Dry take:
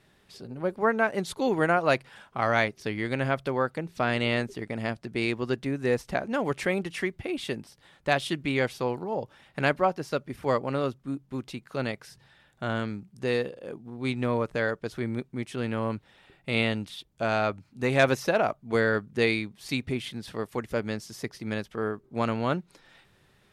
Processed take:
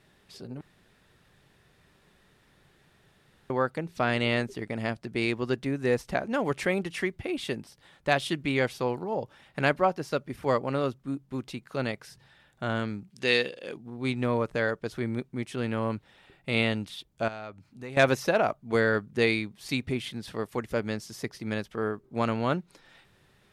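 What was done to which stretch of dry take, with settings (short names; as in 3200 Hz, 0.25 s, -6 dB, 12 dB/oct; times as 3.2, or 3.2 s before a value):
0.61–3.5 room tone
13.1–13.77 weighting filter D
17.28–17.97 compressor 2:1, threshold -47 dBFS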